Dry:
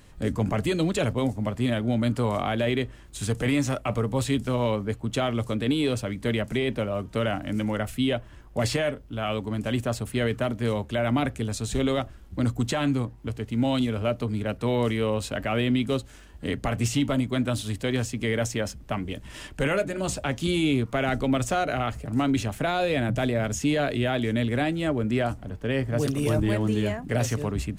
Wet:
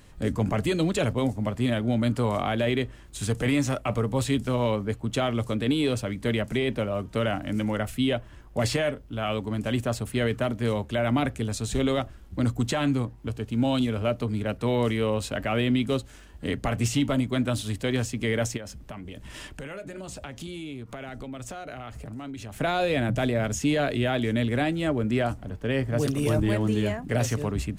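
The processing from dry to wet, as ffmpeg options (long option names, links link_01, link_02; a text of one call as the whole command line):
ffmpeg -i in.wav -filter_complex "[0:a]asettb=1/sr,asplit=3[link_01][link_02][link_03];[link_01]atrim=end=13.284[link_04];[link_02]atrim=start=13.28:end=13.85,asetpts=PTS-STARTPTS,afade=type=in:duration=0.004:curve=qsin,afade=type=out:start_time=0.566:duration=0.004:curve=qsin,bandreject=frequency=2000:width=7.7[link_05];[link_03]atrim=start=13.846[link_06];[link_04][link_05]acrossfade=duration=0.004:curve1=hsin:curve2=qsin[link_07];[link_07][link_06]acrossfade=duration=0.004:curve1=qsin:curve2=hsin,asplit=3[link_08][link_09][link_10];[link_08]afade=type=out:start_time=18.56:duration=0.02[link_11];[link_09]acompressor=threshold=-35dB:ratio=6:attack=3.2:release=140:knee=1:detection=peak,afade=type=in:start_time=18.56:duration=0.02,afade=type=out:start_time=22.58:duration=0.02[link_12];[link_10]afade=type=in:start_time=22.58:duration=0.02[link_13];[link_11][link_12][link_13]amix=inputs=3:normalize=0" out.wav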